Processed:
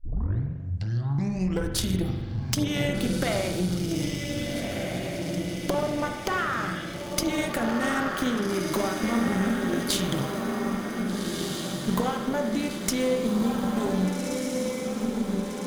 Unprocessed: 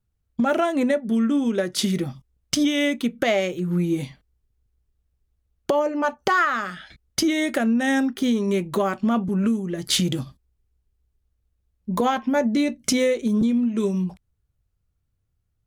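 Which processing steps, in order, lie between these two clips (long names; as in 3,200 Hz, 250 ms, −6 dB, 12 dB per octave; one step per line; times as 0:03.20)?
turntable start at the beginning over 1.82 s
high-shelf EQ 11,000 Hz +10 dB
downward compressor, threshold −26 dBFS, peak gain reduction 10 dB
on a send: feedback delay with all-pass diffusion 1,615 ms, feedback 56%, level −3 dB
on the sum: harmonic generator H 4 −13 dB, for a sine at −8 dBFS
spring reverb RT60 1.1 s, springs 43 ms, chirp 35 ms, DRR 4.5 dB
one half of a high-frequency compander encoder only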